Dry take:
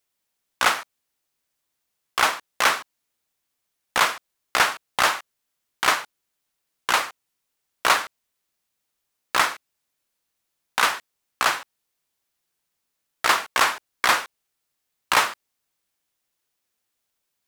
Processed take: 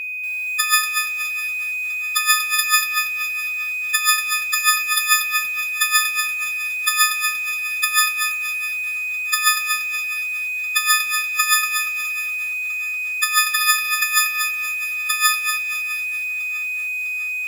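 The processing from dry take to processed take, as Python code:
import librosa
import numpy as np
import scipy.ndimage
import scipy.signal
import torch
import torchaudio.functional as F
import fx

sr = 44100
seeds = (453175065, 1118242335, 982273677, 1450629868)

p1 = fx.freq_snap(x, sr, grid_st=6)
p2 = scipy.signal.sosfilt(scipy.signal.cheby1(6, 1.0, 1200.0, 'highpass', fs=sr, output='sos'), p1)
p3 = fx.high_shelf(p2, sr, hz=8600.0, db=5.0)
p4 = fx.over_compress(p3, sr, threshold_db=-16.0, ratio=-0.5)
p5 = p4 + 10.0 ** (-24.0 / 20.0) * np.sin(2.0 * np.pi * 2500.0 * np.arange(len(p4)) / sr)
p6 = p5 + fx.echo_feedback(p5, sr, ms=653, feedback_pct=49, wet_db=-19.0, dry=0)
p7 = fx.echo_crushed(p6, sr, ms=236, feedback_pct=35, bits=6, wet_db=-6.0)
y = p7 * librosa.db_to_amplitude(-1.0)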